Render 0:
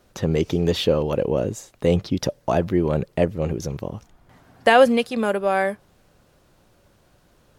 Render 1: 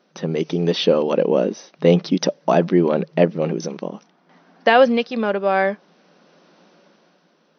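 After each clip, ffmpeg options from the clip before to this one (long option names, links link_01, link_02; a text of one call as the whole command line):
ffmpeg -i in.wav -af "afftfilt=real='re*between(b*sr/4096,160,6200)':imag='im*between(b*sr/4096,160,6200)':win_size=4096:overlap=0.75,dynaudnorm=framelen=130:gausssize=13:maxgain=12dB,volume=-1dB" out.wav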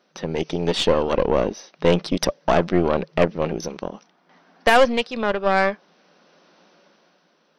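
ffmpeg -i in.wav -af "lowshelf=frequency=430:gain=-6.5,aeval=exprs='0.794*(cos(1*acos(clip(val(0)/0.794,-1,1)))-cos(1*PI/2))+0.0708*(cos(8*acos(clip(val(0)/0.794,-1,1)))-cos(8*PI/2))':channel_layout=same" out.wav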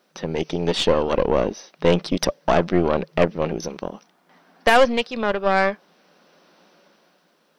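ffmpeg -i in.wav -af "acrusher=bits=11:mix=0:aa=0.000001" out.wav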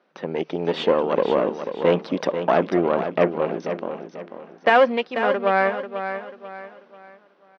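ffmpeg -i in.wav -af "highpass=220,lowpass=2400,aecho=1:1:490|980|1470|1960:0.355|0.128|0.046|0.0166" out.wav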